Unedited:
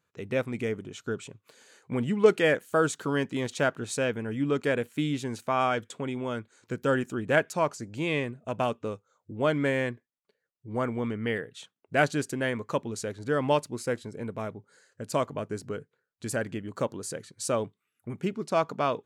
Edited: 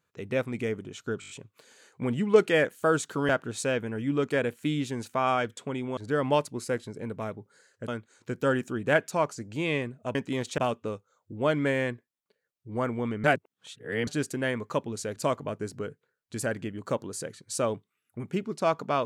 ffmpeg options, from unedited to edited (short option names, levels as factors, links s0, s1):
-filter_complex "[0:a]asplit=14[s0][s1][s2][s3][s4][s5][s6][s7][s8][s9][s10][s11][s12][s13];[s0]atrim=end=1.222[s14];[s1]atrim=start=1.198:end=1.222[s15];[s2]atrim=start=1.198:end=1.222[s16];[s3]atrim=start=1.198:end=1.222[s17];[s4]atrim=start=1.198:end=1.222[s18];[s5]atrim=start=1.198:end=3.192[s19];[s6]atrim=start=3.618:end=6.302[s20];[s7]atrim=start=13.148:end=15.062[s21];[s8]atrim=start=6.298:end=8.572[s22];[s9]atrim=start=3.188:end=3.622[s23];[s10]atrim=start=8.568:end=11.232[s24];[s11]atrim=start=11.228:end=12.062,asetpts=PTS-STARTPTS,areverse[s25];[s12]atrim=start=12.058:end=13.152[s26];[s13]atrim=start=15.058[s27];[s14][s15]acrossfade=d=0.004:c1=hsin:c2=hsin[s28];[s28][s16]acrossfade=d=0.004:c1=hsin:c2=hsin[s29];[s29][s17]acrossfade=d=0.004:c1=hsin:c2=hsin[s30];[s30][s18]acrossfade=d=0.004:c1=hsin:c2=hsin[s31];[s31][s19]acrossfade=d=0.004:c1=hsin:c2=hsin[s32];[s32][s20]acrossfade=d=0.004:c1=hsin:c2=hsin[s33];[s33][s21]acrossfade=d=0.004:c1=hsin:c2=hsin[s34];[s34][s22]acrossfade=d=0.004:c1=hsin:c2=hsin[s35];[s35][s23]acrossfade=d=0.004:c1=hsin:c2=hsin[s36];[s36][s24]acrossfade=d=0.004:c1=hsin:c2=hsin[s37];[s37][s25]acrossfade=d=0.004:c1=hsin:c2=hsin[s38];[s38][s26]acrossfade=d=0.004:c1=hsin:c2=hsin[s39];[s39][s27]acrossfade=d=0.004:c1=hsin:c2=hsin"